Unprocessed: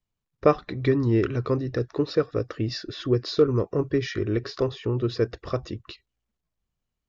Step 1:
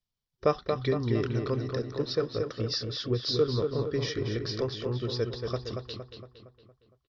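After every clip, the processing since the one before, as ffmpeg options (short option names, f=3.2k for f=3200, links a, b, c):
-filter_complex "[0:a]superequalizer=6b=0.631:13b=2.24:14b=2.82,asplit=2[a][b];[b]adelay=231,lowpass=f=3.6k:p=1,volume=-5dB,asplit=2[c][d];[d]adelay=231,lowpass=f=3.6k:p=1,volume=0.53,asplit=2[e][f];[f]adelay=231,lowpass=f=3.6k:p=1,volume=0.53,asplit=2[g][h];[h]adelay=231,lowpass=f=3.6k:p=1,volume=0.53,asplit=2[i][j];[j]adelay=231,lowpass=f=3.6k:p=1,volume=0.53,asplit=2[k][l];[l]adelay=231,lowpass=f=3.6k:p=1,volume=0.53,asplit=2[m][n];[n]adelay=231,lowpass=f=3.6k:p=1,volume=0.53[o];[c][e][g][i][k][m][o]amix=inputs=7:normalize=0[p];[a][p]amix=inputs=2:normalize=0,volume=-6dB"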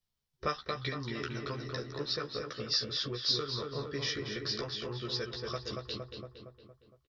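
-filter_complex "[0:a]acrossover=split=970[a][b];[a]acompressor=threshold=-40dB:ratio=4[c];[c][b]amix=inputs=2:normalize=0,asplit=2[d][e];[e]adelay=14,volume=-3dB[f];[d][f]amix=inputs=2:normalize=0"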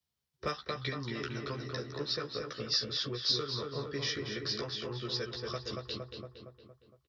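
-filter_complex "[0:a]highpass=56,acrossover=split=190|690|1600[a][b][c][d];[c]asoftclip=type=tanh:threshold=-38.5dB[e];[a][b][e][d]amix=inputs=4:normalize=0"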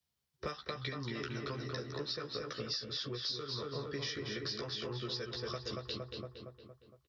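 -af "acompressor=threshold=-37dB:ratio=6,volume=1dB"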